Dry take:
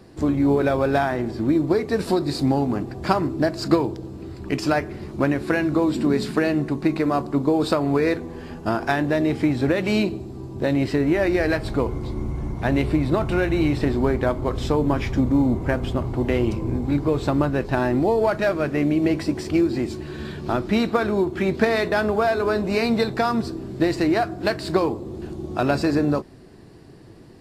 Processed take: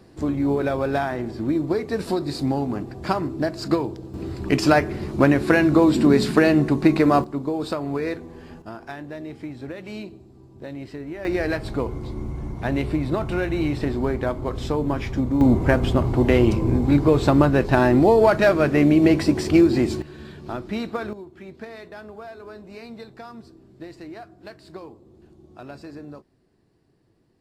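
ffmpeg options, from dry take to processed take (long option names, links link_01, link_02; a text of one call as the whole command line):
ffmpeg -i in.wav -af "asetnsamples=nb_out_samples=441:pad=0,asendcmd='4.14 volume volume 4.5dB;7.24 volume volume -6dB;8.62 volume volume -14dB;11.25 volume volume -3dB;15.41 volume volume 4.5dB;20.02 volume volume -7.5dB;21.13 volume volume -18.5dB',volume=-3dB" out.wav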